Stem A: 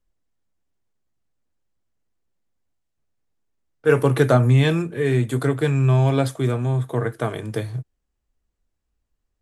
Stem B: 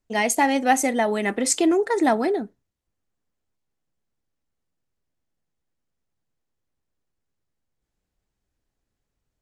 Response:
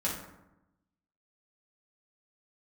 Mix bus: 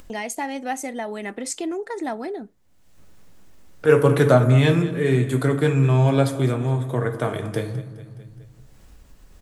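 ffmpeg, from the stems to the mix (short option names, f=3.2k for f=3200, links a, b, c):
-filter_complex "[0:a]volume=-2dB,asplit=3[a][b][c];[b]volume=-10dB[d];[c]volume=-14dB[e];[1:a]volume=-9dB[f];[2:a]atrim=start_sample=2205[g];[d][g]afir=irnorm=-1:irlink=0[h];[e]aecho=0:1:209|418|627|836:1|0.3|0.09|0.027[i];[a][f][h][i]amix=inputs=4:normalize=0,acompressor=mode=upward:threshold=-25dB:ratio=2.5"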